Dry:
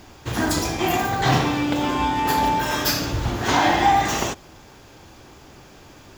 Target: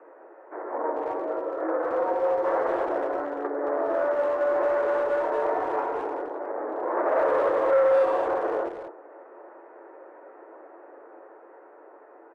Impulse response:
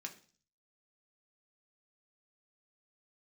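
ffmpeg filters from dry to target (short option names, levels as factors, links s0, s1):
-filter_complex "[0:a]acrossover=split=2200[s0][s1];[s0]aeval=exprs='0.501*sin(PI/2*2*val(0)/0.501)':c=same[s2];[s1]acompressor=threshold=0.00708:ratio=6[s3];[s2][s3]amix=inputs=2:normalize=0,flanger=delay=6:depth=9:regen=-68:speed=0.55:shape=triangular,dynaudnorm=f=210:g=9:m=1.41,asoftclip=type=tanh:threshold=0.188,aecho=1:1:4.9:0.32,highpass=f=450:t=q:w=0.5412,highpass=f=450:t=q:w=1.307,lowpass=f=3500:t=q:w=0.5176,lowpass=f=3500:t=q:w=0.7071,lowpass=f=3500:t=q:w=1.932,afreqshift=280,asplit=2[s4][s5];[s5]adelay=110,highpass=300,lowpass=3400,asoftclip=type=hard:threshold=0.0944,volume=0.355[s6];[s4][s6]amix=inputs=2:normalize=0,asetrate=22050,aresample=44100,volume=0.596"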